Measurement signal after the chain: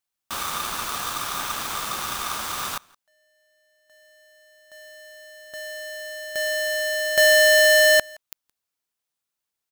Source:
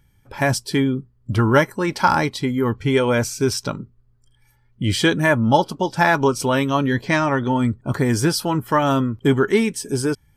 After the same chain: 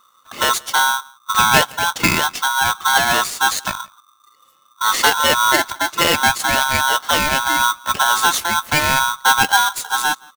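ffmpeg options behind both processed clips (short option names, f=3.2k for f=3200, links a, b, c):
-filter_complex "[0:a]equalizer=f=750:t=o:w=0.54:g=-10.5,asplit=2[a][b];[b]adelay=169.1,volume=-26dB,highshelf=f=4k:g=-3.8[c];[a][c]amix=inputs=2:normalize=0,aeval=exprs='val(0)*sgn(sin(2*PI*1200*n/s))':c=same,volume=3dB"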